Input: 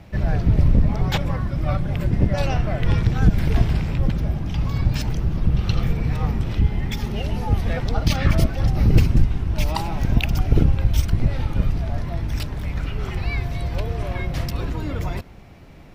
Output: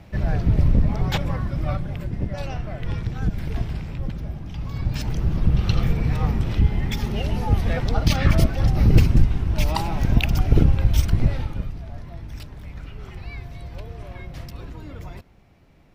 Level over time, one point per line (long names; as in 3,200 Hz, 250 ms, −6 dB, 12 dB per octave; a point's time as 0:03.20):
0:01.61 −1.5 dB
0:02.09 −8 dB
0:04.59 −8 dB
0:05.29 +0.5 dB
0:11.28 +0.5 dB
0:11.71 −10.5 dB